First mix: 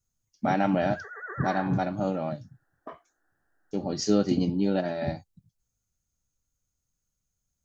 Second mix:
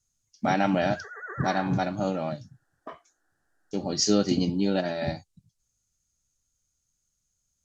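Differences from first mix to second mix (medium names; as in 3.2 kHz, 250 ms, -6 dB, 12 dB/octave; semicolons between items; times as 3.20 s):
speech: add treble shelf 2.6 kHz +10 dB; master: add low-pass 9.4 kHz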